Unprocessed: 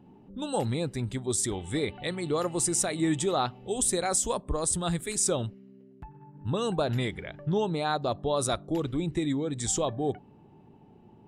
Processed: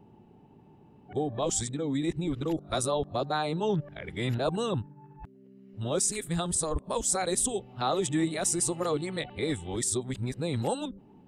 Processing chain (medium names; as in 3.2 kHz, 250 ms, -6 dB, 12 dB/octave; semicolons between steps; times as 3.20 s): reverse the whole clip; trim -1 dB